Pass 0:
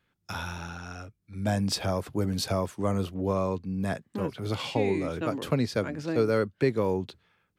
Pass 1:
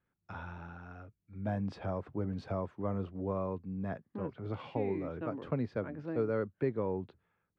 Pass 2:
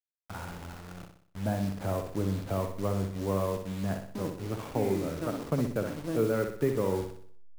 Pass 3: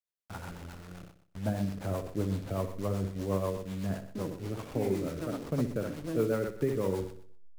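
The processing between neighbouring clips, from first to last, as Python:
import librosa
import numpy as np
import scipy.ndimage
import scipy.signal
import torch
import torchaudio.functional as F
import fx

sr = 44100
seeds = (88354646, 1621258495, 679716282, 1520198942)

y1 = scipy.signal.sosfilt(scipy.signal.butter(2, 1600.0, 'lowpass', fs=sr, output='sos'), x)
y1 = F.gain(torch.from_numpy(y1), -7.5).numpy()
y2 = fx.delta_hold(y1, sr, step_db=-43.0)
y2 = fx.room_flutter(y2, sr, wall_m=10.6, rt60_s=0.55)
y2 = F.gain(torch.from_numpy(y2), 4.5).numpy()
y3 = fx.rotary(y2, sr, hz=8.0)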